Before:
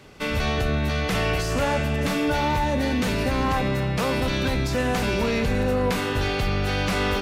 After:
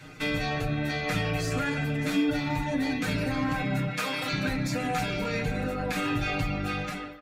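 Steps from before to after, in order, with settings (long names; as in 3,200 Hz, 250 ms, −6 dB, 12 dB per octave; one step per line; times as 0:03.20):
fade-out on the ending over 1.05 s
tape delay 151 ms, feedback 54%, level −8 dB, low-pass 2,400 Hz
reverb reduction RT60 0.75 s
0:03.87–0:04.33: high-pass filter 930 Hz 6 dB per octave
brickwall limiter −20 dBFS, peak gain reduction 5.5 dB
downward compressor, threshold −27 dBFS, peak gain reduction 4 dB
comb filter 6.5 ms, depth 74%
convolution reverb, pre-delay 3 ms, DRR 2 dB
level −2.5 dB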